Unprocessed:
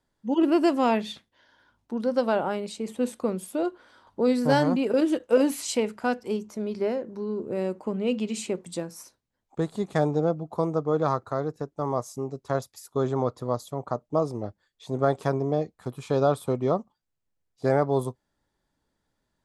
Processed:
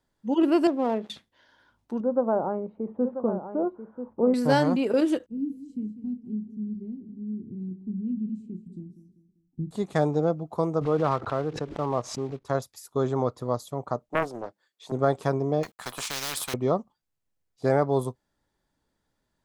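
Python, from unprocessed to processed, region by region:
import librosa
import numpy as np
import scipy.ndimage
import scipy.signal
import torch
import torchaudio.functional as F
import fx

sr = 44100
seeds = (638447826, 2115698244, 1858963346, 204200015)

y = fx.chain(x, sr, fx.dead_time(dead_ms=0.16),
    fx.bandpass_q(hz=400.0, q=0.98), at=(0.67, 1.1))
y = fx.chain(y, sr, fx.lowpass(hz=1100.0, slope=24),
    fx.echo_single(ms=988, db=-10.0), at=(2.0, 4.34))
y = fx.chain(y, sr, fx.cheby2_lowpass(hz=510.0, order=4, stop_db=40),
    fx.doubler(ms=33.0, db=-11),
    fx.echo_feedback(ms=196, feedback_pct=39, wet_db=-13), at=(5.26, 9.71))
y = fx.chain(y, sr, fx.block_float(bits=5),
    fx.lowpass(hz=3400.0, slope=12),
    fx.pre_swell(db_per_s=100.0), at=(10.81, 12.45))
y = fx.chain(y, sr, fx.highpass(hz=300.0, slope=12),
    fx.doppler_dist(depth_ms=0.62), at=(14.09, 14.92))
y = fx.chain(y, sr, fx.law_mismatch(coded='A'),
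    fx.low_shelf(hz=260.0, db=-11.5),
    fx.spectral_comp(ratio=10.0), at=(15.63, 16.54))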